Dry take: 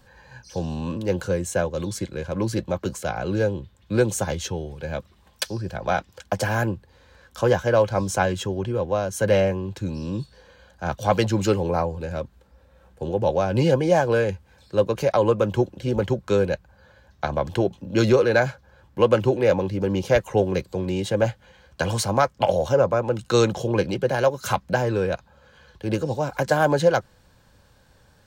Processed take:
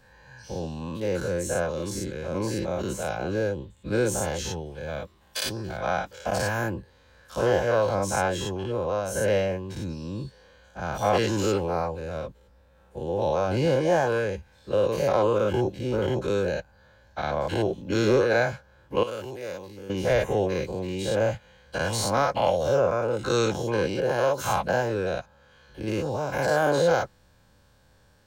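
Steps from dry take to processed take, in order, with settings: every event in the spectrogram widened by 120 ms; 19.03–19.90 s: pre-emphasis filter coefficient 0.8; trim -8 dB

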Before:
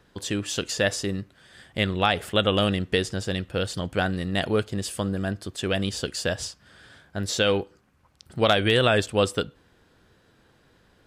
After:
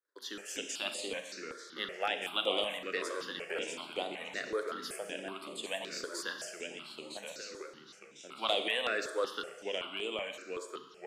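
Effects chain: gate -57 dBFS, range -28 dB; Bessel high-pass 470 Hz, order 8; 7.20–7.61 s: compression, threshold -36 dBFS, peak gain reduction 16 dB; ever faster or slower copies 207 ms, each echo -2 st, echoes 3, each echo -6 dB; Schroeder reverb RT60 1.2 s, combs from 28 ms, DRR 7 dB; stepped phaser 5.3 Hz 770–5700 Hz; trim -7 dB

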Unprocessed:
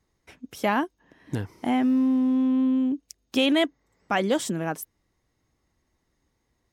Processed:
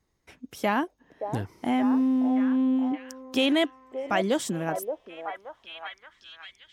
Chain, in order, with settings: repeats whose band climbs or falls 574 ms, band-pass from 590 Hz, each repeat 0.7 oct, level -4.5 dB; trim -1.5 dB

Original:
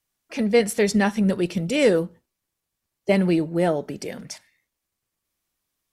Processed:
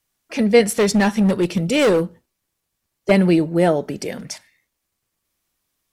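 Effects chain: 0.66–3.11 s: hard clipper -17 dBFS, distortion -14 dB; trim +5 dB

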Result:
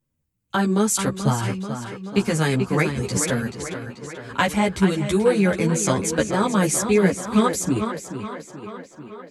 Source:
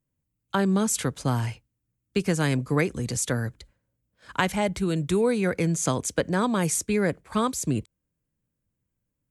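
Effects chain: tape echo 434 ms, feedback 66%, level -7.5 dB, low-pass 5.5 kHz; three-phase chorus; trim +7 dB

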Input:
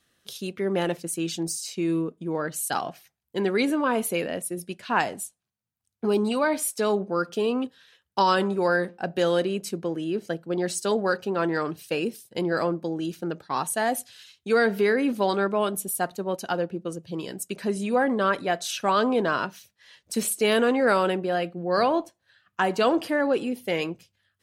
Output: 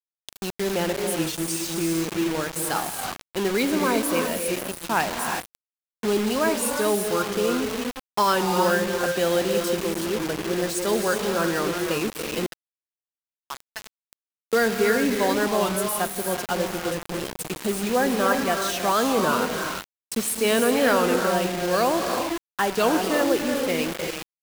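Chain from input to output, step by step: gated-style reverb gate 400 ms rising, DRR 3.5 dB; 12.46–14.53 s: auto-wah 550–3000 Hz, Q 3.7, up, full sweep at -20 dBFS; bit crusher 5-bit; warped record 33 1/3 rpm, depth 100 cents

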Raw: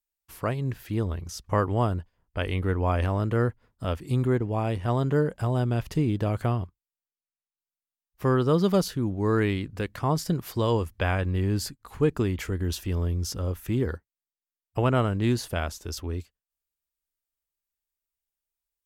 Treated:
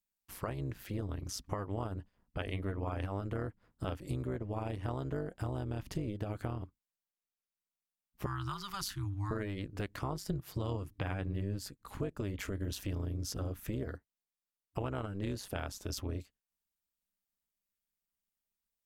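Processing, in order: 8.26–9.31 s: Chebyshev band-stop 120–1000 Hz, order 3; 10.30–11.59 s: peaking EQ 140 Hz +11.5 dB 0.66 oct; compression 6:1, threshold -32 dBFS, peak gain reduction 15 dB; AM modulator 200 Hz, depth 65%; trim +1 dB

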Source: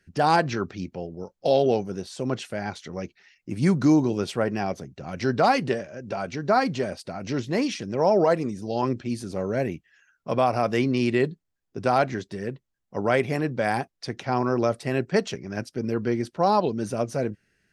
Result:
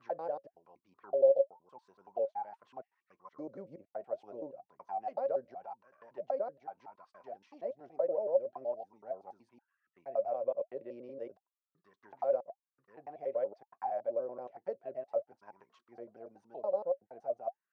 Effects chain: slices played last to first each 94 ms, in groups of 6; auto-wah 550–1400 Hz, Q 20, down, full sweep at -19.5 dBFS; trim +1.5 dB

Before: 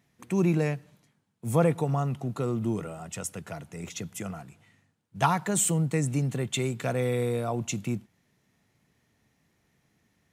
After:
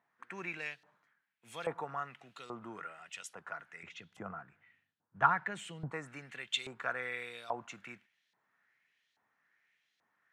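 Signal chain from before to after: 3.83–5.92 s: tilt EQ -4 dB/octave; LFO band-pass saw up 1.2 Hz 880–4000 Hz; peaking EQ 1.6 kHz +6.5 dB 0.59 oct; trim +1 dB

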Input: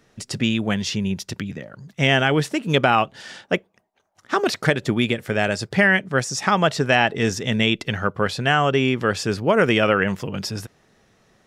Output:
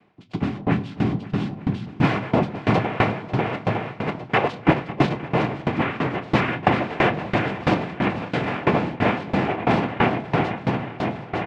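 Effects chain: 3.46–4.52 s: treble shelf 4.2 kHz +11.5 dB; noise-vocoded speech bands 4; 0.86–1.65 s: added noise violet -53 dBFS; distance through air 390 m; doubling 25 ms -12.5 dB; shuffle delay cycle 907 ms, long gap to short 1.5:1, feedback 56%, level -5 dB; on a send at -7 dB: reverberation RT60 3.6 s, pre-delay 3 ms; on the sum: sawtooth tremolo in dB decaying 3 Hz, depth 21 dB; trim +4 dB

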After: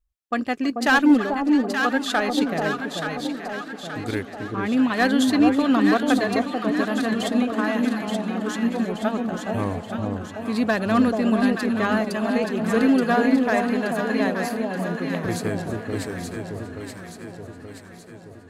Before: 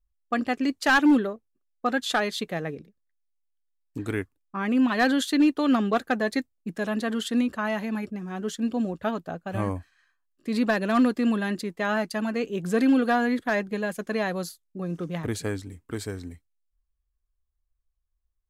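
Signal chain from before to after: echo whose repeats swap between lows and highs 438 ms, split 920 Hz, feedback 73%, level -2 dB; Chebyshev shaper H 7 -35 dB, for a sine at -8.5 dBFS; modulated delay 321 ms, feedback 72%, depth 75 cents, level -17 dB; trim +2 dB

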